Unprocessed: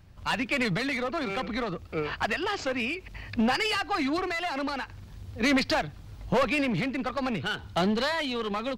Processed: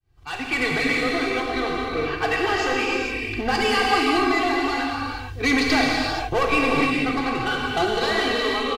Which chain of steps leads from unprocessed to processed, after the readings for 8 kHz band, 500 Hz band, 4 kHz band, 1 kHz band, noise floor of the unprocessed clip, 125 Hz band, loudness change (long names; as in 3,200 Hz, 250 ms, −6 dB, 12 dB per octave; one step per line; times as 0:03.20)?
+7.5 dB, +6.5 dB, +7.0 dB, +8.0 dB, −47 dBFS, +2.5 dB, +6.5 dB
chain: fade in at the beginning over 0.58 s
comb filter 2.6 ms, depth 98%
reverb whose tail is shaped and stops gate 500 ms flat, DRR −2.5 dB